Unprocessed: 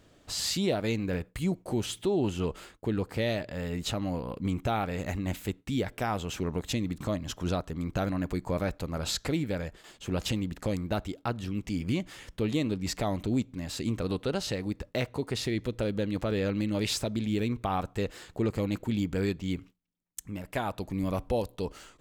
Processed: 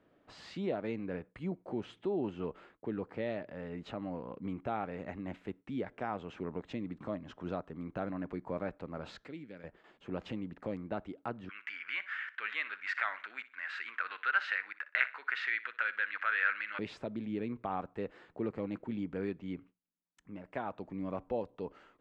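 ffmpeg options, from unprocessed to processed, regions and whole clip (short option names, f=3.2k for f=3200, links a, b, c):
-filter_complex "[0:a]asettb=1/sr,asplit=3[a][b][c];[a]atrim=end=9.244[d];[b]atrim=start=9.24:end=9.64,asetpts=PTS-STARTPTS,afade=t=in:d=0.004:c=qsin,afade=t=out:st=0.396:d=0.004:c=qsin,highpass=f=370:p=1,equalizer=f=800:t=o:w=2.1:g=-13.5[e];[c]atrim=start=9.636[f];[d][e]acrossfade=d=0.004:c1=hsin:c2=qsin[g];[g][f]acrossfade=d=0.004:c1=qsin:c2=hsin,asettb=1/sr,asplit=3[h][i][j];[h]atrim=end=11.494[k];[i]atrim=start=11.49:end=16.79,asetpts=PTS-STARTPTS,afade=t=in:d=0.004:c=qsin,afade=t=out:st=5.296:d=0.004:c=qsin,highpass=f=1.5k:t=q:w=5.4,equalizer=f=2.2k:t=o:w=1.9:g=12.5,aecho=1:1:61|122|183:0.141|0.041|0.0119,atrim=end_sample=233730[l];[j]atrim=start=16.786[m];[k][l]acrossfade=d=0.004:c1=hsin:c2=qsin[n];[n][m]acrossfade=d=0.004:c1=qsin:c2=hsin,lowpass=5k,acrossover=split=160 2400:gain=0.2 1 0.126[o][p][q];[o][p][q]amix=inputs=3:normalize=0,volume=-6dB"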